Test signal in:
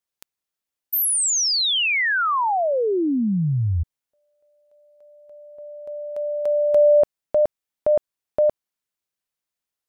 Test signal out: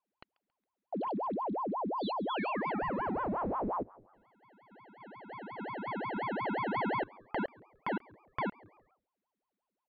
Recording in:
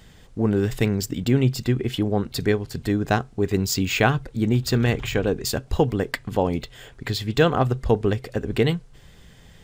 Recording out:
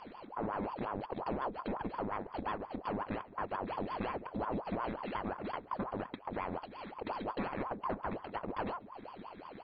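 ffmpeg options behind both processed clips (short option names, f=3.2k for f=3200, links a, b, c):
-filter_complex "[0:a]acompressor=threshold=-34dB:ratio=4:attack=2.1:release=293:knee=6:detection=peak,aeval=exprs='abs(val(0))':c=same,asplit=2[a][b];[b]asplit=3[c][d][e];[c]adelay=137,afreqshift=97,volume=-23.5dB[f];[d]adelay=274,afreqshift=194,volume=-31.2dB[g];[e]adelay=411,afreqshift=291,volume=-39dB[h];[f][g][h]amix=inputs=3:normalize=0[i];[a][i]amix=inputs=2:normalize=0,aresample=8000,aresample=44100,asuperstop=centerf=2900:order=20:qfactor=2.9,aeval=exprs='val(0)*sin(2*PI*630*n/s+630*0.7/5.6*sin(2*PI*5.6*n/s))':c=same,volume=2dB"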